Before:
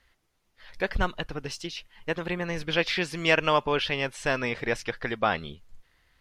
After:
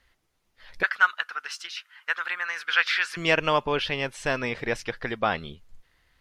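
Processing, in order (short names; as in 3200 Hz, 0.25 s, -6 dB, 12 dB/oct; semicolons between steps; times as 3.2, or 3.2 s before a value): 0.83–3.17 resonant high-pass 1400 Hz, resonance Q 4.7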